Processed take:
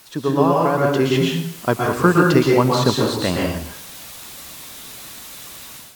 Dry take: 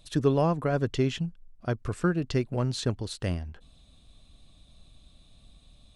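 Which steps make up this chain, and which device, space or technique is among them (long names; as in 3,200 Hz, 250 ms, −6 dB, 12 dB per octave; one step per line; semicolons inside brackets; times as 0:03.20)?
de-essing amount 80%
filmed off a television (band-pass filter 170–7,900 Hz; parametric band 1,000 Hz +8.5 dB 0.53 octaves; convolution reverb RT60 0.60 s, pre-delay 111 ms, DRR −1.5 dB; white noise bed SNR 22 dB; automatic gain control gain up to 11.5 dB; level +1.5 dB; AAC 96 kbit/s 44,100 Hz)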